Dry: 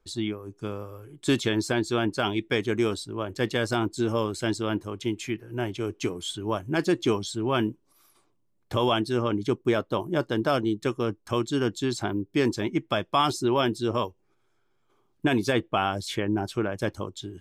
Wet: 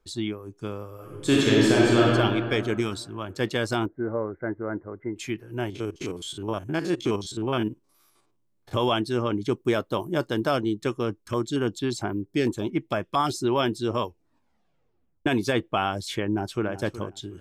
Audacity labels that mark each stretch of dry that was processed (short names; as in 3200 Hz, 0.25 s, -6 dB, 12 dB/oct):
0.920000	2.060000	reverb throw, RT60 2.3 s, DRR -5 dB
2.800000	3.290000	bell 470 Hz -8.5 dB
3.860000	5.160000	rippled Chebyshev low-pass 2100 Hz, ripple 6 dB
5.700000	8.740000	stepped spectrum every 50 ms
9.520000	10.490000	high shelf 6300 Hz +7 dB
11.220000	13.360000	stepped notch 8.8 Hz 760–6900 Hz
14.050000	14.050000	tape stop 1.21 s
16.250000	16.720000	echo throw 0.37 s, feedback 20%, level -13.5 dB